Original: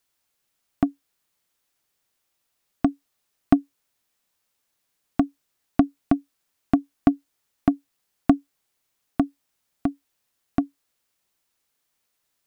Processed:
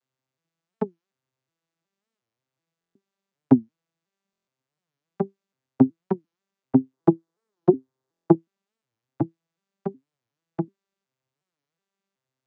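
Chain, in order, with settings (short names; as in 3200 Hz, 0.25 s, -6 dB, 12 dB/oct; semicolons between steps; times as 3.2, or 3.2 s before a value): arpeggiated vocoder major triad, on C3, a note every 0.368 s; 6.93–8.35 fifteen-band EQ 400 Hz +10 dB, 1000 Hz +6 dB, 2500 Hz -7 dB; stuck buffer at 2.79/4.31/8.12, samples 1024, times 6; record warp 45 rpm, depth 250 cents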